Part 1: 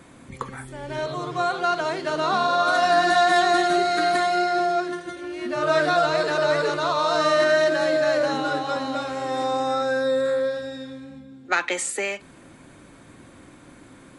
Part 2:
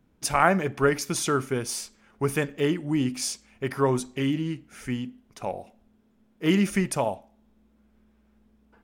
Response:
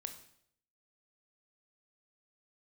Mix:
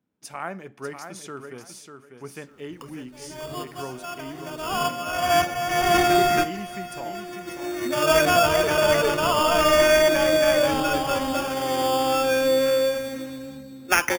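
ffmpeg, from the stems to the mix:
-filter_complex "[0:a]acrusher=samples=11:mix=1:aa=0.000001,adynamicequalizer=threshold=0.0178:dfrequency=5300:dqfactor=0.7:tfrequency=5300:tqfactor=0.7:attack=5:release=100:ratio=0.375:range=2:mode=cutabove:tftype=highshelf,adelay=2400,volume=1.26,asplit=2[s0][s1];[s1]volume=0.075[s2];[1:a]highpass=140,volume=0.237,asplit=3[s3][s4][s5];[s4]volume=0.422[s6];[s5]apad=whole_len=731265[s7];[s0][s7]sidechaincompress=threshold=0.00158:ratio=4:attack=36:release=373[s8];[s2][s6]amix=inputs=2:normalize=0,aecho=0:1:595|1190|1785:1|0.21|0.0441[s9];[s8][s3][s9]amix=inputs=3:normalize=0"

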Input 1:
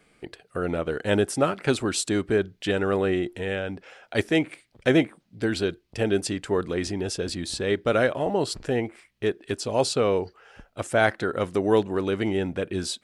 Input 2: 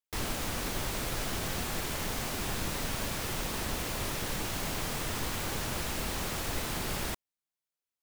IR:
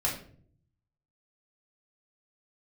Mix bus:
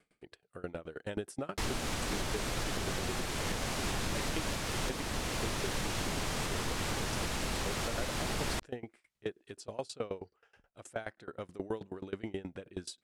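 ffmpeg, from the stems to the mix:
-filter_complex "[0:a]aeval=exprs='val(0)*pow(10,-25*if(lt(mod(9.4*n/s,1),2*abs(9.4)/1000),1-mod(9.4*n/s,1)/(2*abs(9.4)/1000),(mod(9.4*n/s,1)-2*abs(9.4)/1000)/(1-2*abs(9.4)/1000))/20)':c=same,volume=0.422[s0];[1:a]lowpass=9300,adelay=1450,volume=1.41[s1];[s0][s1]amix=inputs=2:normalize=0,alimiter=limit=0.0668:level=0:latency=1:release=468"

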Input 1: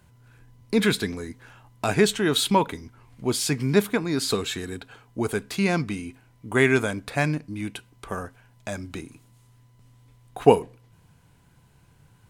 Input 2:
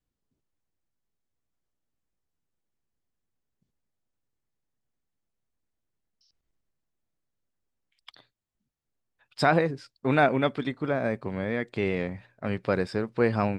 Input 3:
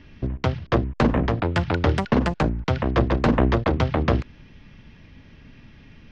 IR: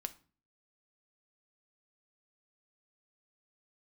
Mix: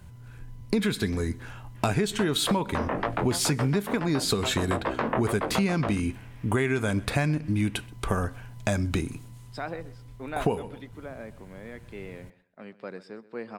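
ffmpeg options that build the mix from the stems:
-filter_complex "[0:a]lowshelf=f=130:g=11,volume=1.06,asplit=3[s0][s1][s2];[s1]volume=0.562[s3];[s2]volume=0.075[s4];[1:a]highpass=f=170:w=0.5412,highpass=f=170:w=1.3066,adelay=150,volume=0.224,asplit=2[s5][s6];[s6]volume=0.126[s7];[2:a]flanger=delay=18.5:depth=5:speed=2.2,bandpass=f=1100:t=q:w=0.63:csg=0,adelay=1750,volume=1.12[s8];[s0][s8]amix=inputs=2:normalize=0,dynaudnorm=f=180:g=17:m=3.76,alimiter=limit=0.299:level=0:latency=1:release=270,volume=1[s9];[3:a]atrim=start_sample=2205[s10];[s3][s10]afir=irnorm=-1:irlink=0[s11];[s4][s7]amix=inputs=2:normalize=0,aecho=0:1:129|258|387:1|0.2|0.04[s12];[s5][s9][s11][s12]amix=inputs=4:normalize=0,acompressor=threshold=0.0794:ratio=6"

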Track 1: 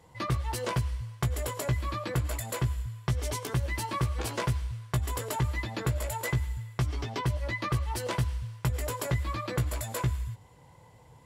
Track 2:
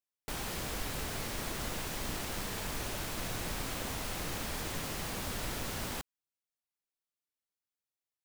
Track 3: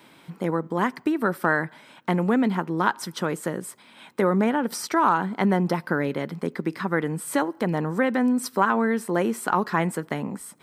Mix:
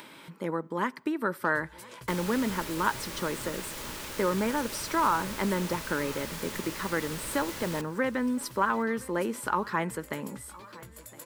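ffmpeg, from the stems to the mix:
-filter_complex "[0:a]highshelf=f=7100:g=11.5,adelay=1250,volume=0.126[s0];[1:a]adelay=1800,volume=1,asplit=2[s1][s2];[s2]volume=0.133[s3];[2:a]volume=0.596,asplit=2[s4][s5];[s5]volume=0.0708[s6];[s3][s6]amix=inputs=2:normalize=0,aecho=0:1:1014|2028|3042|4056|5070:1|0.39|0.152|0.0593|0.0231[s7];[s0][s1][s4][s7]amix=inputs=4:normalize=0,asuperstop=centerf=730:order=4:qfactor=6.3,acompressor=mode=upward:threshold=0.0112:ratio=2.5,lowshelf=f=190:g=-8"

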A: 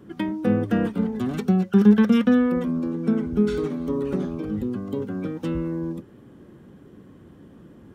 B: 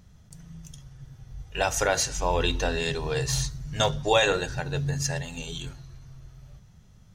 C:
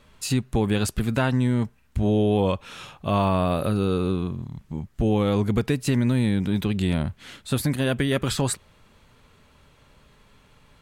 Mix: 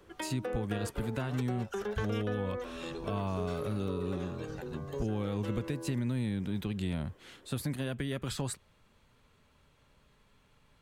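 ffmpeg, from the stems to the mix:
-filter_complex "[0:a]highpass=f=420:w=0.5412,highpass=f=420:w=1.3066,volume=0.596[s0];[1:a]acompressor=threshold=0.0447:ratio=6,volume=0.251[s1];[2:a]volume=0.316,asplit=2[s2][s3];[s3]apad=whole_len=315220[s4];[s1][s4]sidechaincompress=threshold=0.00891:ratio=8:attack=16:release=365[s5];[s0][s5][s2]amix=inputs=3:normalize=0,acrossover=split=180[s6][s7];[s7]acompressor=threshold=0.0224:ratio=6[s8];[s6][s8]amix=inputs=2:normalize=0"

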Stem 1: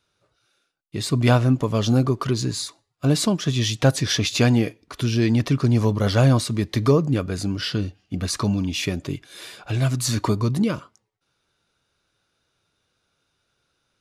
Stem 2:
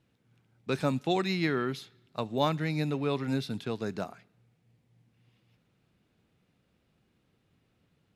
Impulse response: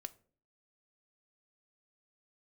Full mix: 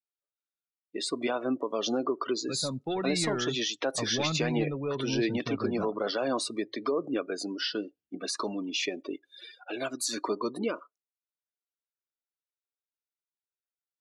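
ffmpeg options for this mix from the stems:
-filter_complex "[0:a]highpass=f=310:w=0.5412,highpass=f=310:w=1.3066,alimiter=limit=0.126:level=0:latency=1:release=100,volume=0.841[s0];[1:a]dynaudnorm=f=170:g=11:m=3.98,aphaser=in_gain=1:out_gain=1:delay=2.4:decay=0.26:speed=0.46:type=triangular,asoftclip=type=tanh:threshold=0.178,adelay=1800,volume=0.316[s1];[s0][s1]amix=inputs=2:normalize=0,afftdn=nr=34:nf=-37"

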